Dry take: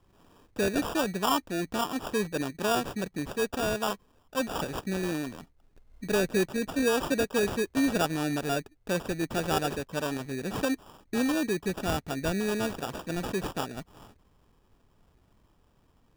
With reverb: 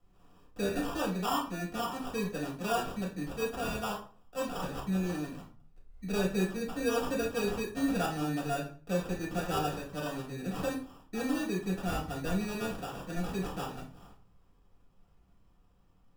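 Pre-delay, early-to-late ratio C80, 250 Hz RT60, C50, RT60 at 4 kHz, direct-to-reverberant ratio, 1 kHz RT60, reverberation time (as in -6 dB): 4 ms, 13.5 dB, 0.50 s, 7.5 dB, 0.30 s, -4.5 dB, 0.45 s, 0.45 s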